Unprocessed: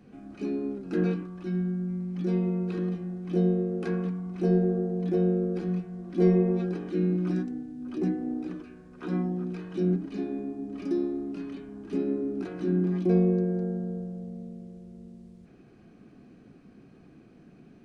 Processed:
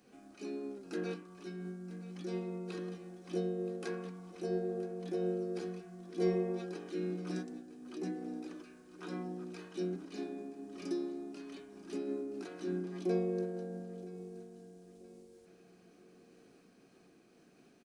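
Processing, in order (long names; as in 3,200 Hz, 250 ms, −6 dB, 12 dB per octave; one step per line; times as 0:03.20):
bass and treble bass −14 dB, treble +12 dB
repeating echo 974 ms, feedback 44%, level −16.5 dB
amplitude modulation by smooth noise, depth 50%
level −3 dB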